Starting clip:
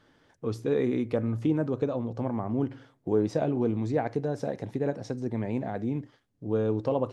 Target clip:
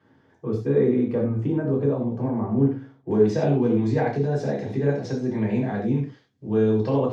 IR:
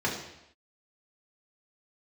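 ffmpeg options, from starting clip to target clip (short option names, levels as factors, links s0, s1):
-filter_complex "[0:a]asetnsamples=n=441:p=0,asendcmd='3.11 equalizer g 7',equalizer=f=4600:t=o:w=2.5:g=-6.5[s0];[1:a]atrim=start_sample=2205,afade=t=out:st=0.16:d=0.01,atrim=end_sample=7497[s1];[s0][s1]afir=irnorm=-1:irlink=0,volume=0.473"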